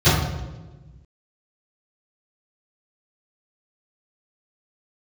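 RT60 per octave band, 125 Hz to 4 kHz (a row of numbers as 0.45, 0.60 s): 1.8, 1.7, 1.4, 1.1, 0.90, 0.80 s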